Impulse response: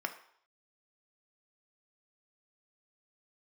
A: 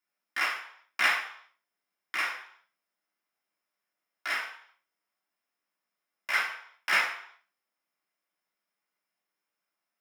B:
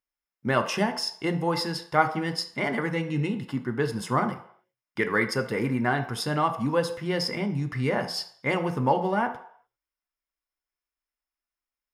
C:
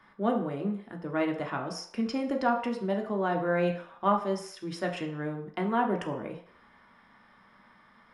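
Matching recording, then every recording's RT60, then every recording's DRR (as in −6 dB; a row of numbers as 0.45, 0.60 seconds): B; 0.65, 0.65, 0.65 seconds; −5.5, 5.5, 1.5 decibels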